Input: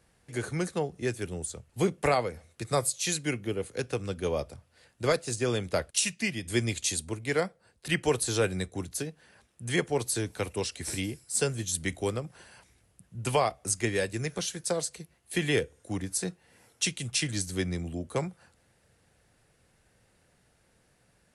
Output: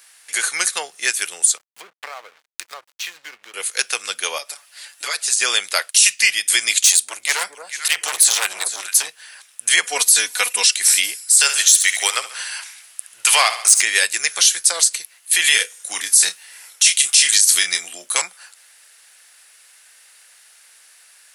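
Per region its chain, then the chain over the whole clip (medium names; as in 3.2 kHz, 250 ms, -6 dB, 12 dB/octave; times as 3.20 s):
1.57–3.54 s: low-pass that closes with the level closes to 1.4 kHz, closed at -25 dBFS + compression 2.5:1, threshold -44 dBFS + hysteresis with a dead band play -44 dBFS
4.38–5.36 s: high-pass 170 Hz 24 dB/octave + comb 7 ms, depth 97% + compression 2:1, threshold -43 dBFS
6.79–9.08 s: echo whose repeats swap between lows and highs 221 ms, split 850 Hz, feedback 53%, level -10 dB + hard clipper -24.5 dBFS + transformer saturation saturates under 440 Hz
9.83–10.74 s: resonant low shelf 110 Hz -8.5 dB, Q 3 + comb 4.1 ms, depth 82%
11.40–13.82 s: peaking EQ 220 Hz -8 dB 0.66 oct + overdrive pedal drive 11 dB, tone 7.2 kHz, clips at -14 dBFS + feedback delay 69 ms, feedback 51%, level -14.5 dB
15.44–18.22 s: treble shelf 2.3 kHz +7 dB + doubling 28 ms -8.5 dB + tape noise reduction on one side only decoder only
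whole clip: high-pass 1.3 kHz 12 dB/octave; tilt EQ +2.5 dB/octave; loudness maximiser +17.5 dB; trim -1 dB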